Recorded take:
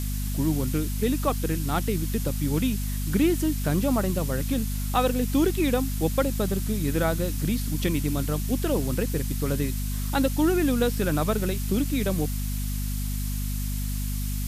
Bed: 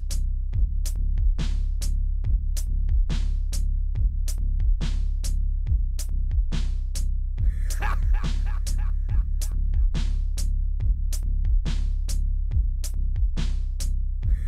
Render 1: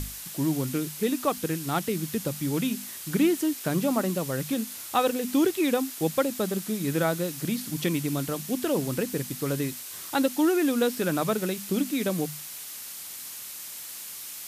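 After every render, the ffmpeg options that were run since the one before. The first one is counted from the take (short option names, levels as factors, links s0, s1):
-af "bandreject=f=50:t=h:w=6,bandreject=f=100:t=h:w=6,bandreject=f=150:t=h:w=6,bandreject=f=200:t=h:w=6,bandreject=f=250:t=h:w=6"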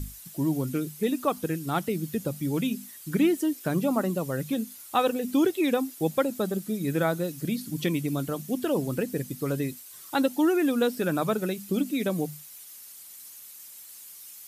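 -af "afftdn=nr=12:nf=-40"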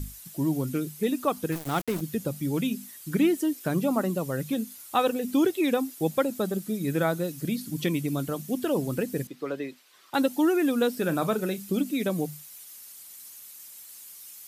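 -filter_complex "[0:a]asettb=1/sr,asplit=3[s0][s1][s2];[s0]atrim=end=1.524[s3];[s1]atrim=start=1.52:end=2.01,asetpts=PTS-STARTPTS,afade=t=in:d=0.004:c=qsin,afade=t=out:st=0.486:d=0.004:c=qsin,aeval=exprs='val(0)*gte(abs(val(0)),0.0251)':c=same[s4];[s2]atrim=start=2.006[s5];[s3][s4]acrossfade=d=0.004:c1=hsin:c2=qsin[s6];[s6][s5]acrossfade=d=0.004:c1=qsin:c2=hsin,asettb=1/sr,asplit=3[s7][s8][s9];[s7]atrim=end=9.274[s10];[s8]atrim=start=9.27:end=10.14,asetpts=PTS-STARTPTS,afade=t=in:d=0.004:c=qsin,afade=t=out:st=0.866:d=0.004:c=qsin,acrossover=split=280 4400:gain=0.1 1 0.1[s11][s12][s13];[s11][s12][s13]amix=inputs=3:normalize=0[s14];[s9]atrim=start=10.136[s15];[s10][s14]acrossfade=d=0.004:c1=hsin:c2=qsin[s16];[s16][s15]acrossfade=d=0.004:c1=qsin:c2=hsin,asettb=1/sr,asplit=3[s17][s18][s19];[s17]atrim=end=10.994[s20];[s18]atrim=start=10.99:end=11.72,asetpts=PTS-STARTPTS,afade=t=in:d=0.004:c=qsin,afade=t=out:st=0.726:d=0.004:c=qsin,asplit=2[s21][s22];[s22]adelay=36,volume=0.211[s23];[s21][s23]amix=inputs=2:normalize=0,atrim=end_sample=32193[s24];[s19]atrim=start=11.716[s25];[s20][s24]acrossfade=d=0.004:c1=hsin:c2=qsin[s26];[s26][s25]acrossfade=d=0.004:c1=qsin:c2=hsin"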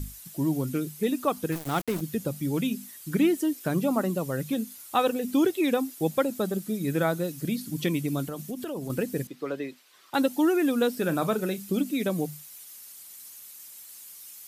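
-filter_complex "[0:a]asettb=1/sr,asplit=3[s0][s1][s2];[s0]atrim=end=8.274[s3];[s1]atrim=start=8.27:end=8.9,asetpts=PTS-STARTPTS,afade=t=in:d=0.004:c=qsin,afade=t=out:st=0.626:d=0.004:c=qsin,acompressor=threshold=0.0316:ratio=6:attack=3.2:release=140:knee=1:detection=peak[s4];[s2]atrim=start=8.896[s5];[s3][s4]acrossfade=d=0.004:c1=hsin:c2=qsin[s6];[s6][s5]acrossfade=d=0.004:c1=qsin:c2=hsin"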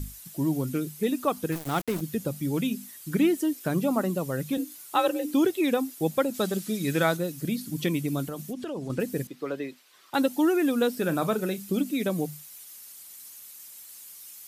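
-filter_complex "[0:a]asettb=1/sr,asplit=3[s0][s1][s2];[s0]atrim=end=4.574[s3];[s1]atrim=start=4.57:end=5.34,asetpts=PTS-STARTPTS,afade=t=in:d=0.004:c=qsin,afade=t=out:st=0.766:d=0.004:c=qsin,afreqshift=50[s4];[s2]atrim=start=5.336[s5];[s3][s4]acrossfade=d=0.004:c1=hsin:c2=qsin[s6];[s6][s5]acrossfade=d=0.004:c1=qsin:c2=hsin,asettb=1/sr,asplit=3[s7][s8][s9];[s7]atrim=end=6.344[s10];[s8]atrim=start=6.34:end=7.17,asetpts=PTS-STARTPTS,afade=t=in:d=0.004:c=qsin,afade=t=out:st=0.826:d=0.004:c=qsin,equalizer=f=4000:t=o:w=2.9:g=8[s11];[s9]atrim=start=7.166[s12];[s10][s11]acrossfade=d=0.004:c1=hsin:c2=qsin[s13];[s13][s12]acrossfade=d=0.004:c1=qsin:c2=hsin,asettb=1/sr,asplit=3[s14][s15][s16];[s14]atrim=end=8.534[s17];[s15]atrim=start=8.53:end=9,asetpts=PTS-STARTPTS,afade=t=in:d=0.004:c=qsin,afade=t=out:st=0.466:d=0.004:c=qsin,lowpass=6700[s18];[s16]atrim=start=8.996[s19];[s17][s18]acrossfade=d=0.004:c1=hsin:c2=qsin[s20];[s20][s19]acrossfade=d=0.004:c1=qsin:c2=hsin"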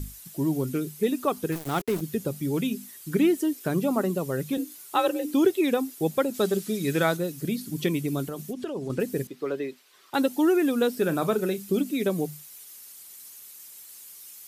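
-af "equalizer=f=400:w=7.3:g=7.5"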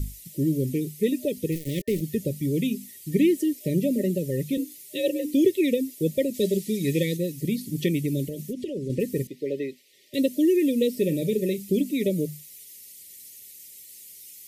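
-af "afftfilt=real='re*(1-between(b*sr/4096,610,1800))':imag='im*(1-between(b*sr/4096,610,1800))':win_size=4096:overlap=0.75,lowshelf=f=150:g=7"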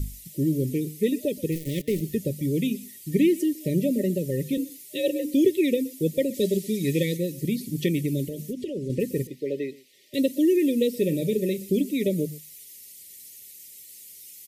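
-af "aecho=1:1:124:0.0891"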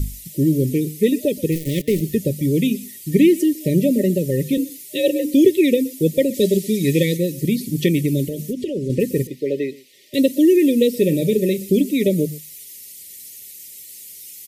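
-af "volume=2.24"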